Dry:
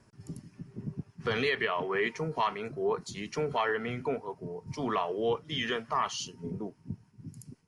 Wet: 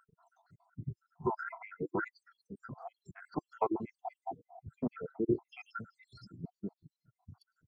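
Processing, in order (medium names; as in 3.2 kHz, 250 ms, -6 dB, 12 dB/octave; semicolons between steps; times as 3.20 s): random holes in the spectrogram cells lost 78%; resonant high shelf 2.1 kHz -11 dB, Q 3; formant shift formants -4 st; trim +1 dB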